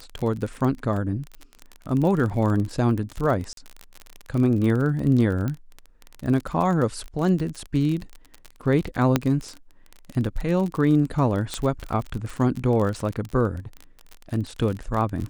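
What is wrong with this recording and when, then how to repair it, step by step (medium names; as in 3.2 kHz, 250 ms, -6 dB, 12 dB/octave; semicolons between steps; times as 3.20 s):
crackle 30 per s -27 dBFS
3.53–3.57 s: dropout 42 ms
5.48 s: pop -16 dBFS
9.16 s: pop -5 dBFS
11.54 s: pop -12 dBFS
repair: de-click; interpolate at 3.53 s, 42 ms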